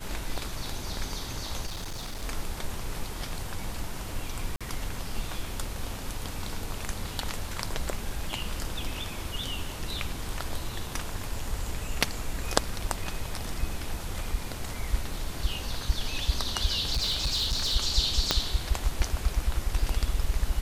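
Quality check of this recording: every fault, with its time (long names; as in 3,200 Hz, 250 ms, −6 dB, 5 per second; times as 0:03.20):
0:01.66–0:02.24: clipping −31.5 dBFS
0:04.56–0:04.61: drop-out 46 ms
0:16.92–0:17.76: clipping −22.5 dBFS
0:18.31: click −6 dBFS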